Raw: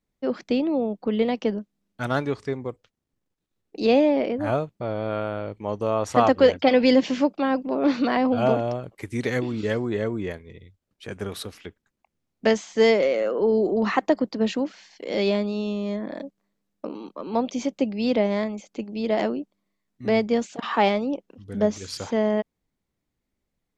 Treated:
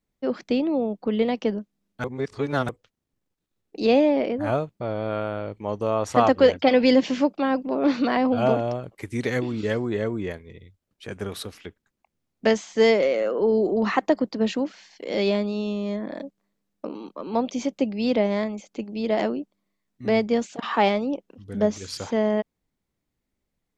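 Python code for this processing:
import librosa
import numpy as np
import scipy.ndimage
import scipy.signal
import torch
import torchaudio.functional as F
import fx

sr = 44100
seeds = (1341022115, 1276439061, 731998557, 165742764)

y = fx.edit(x, sr, fx.reverse_span(start_s=2.04, length_s=0.65), tone=tone)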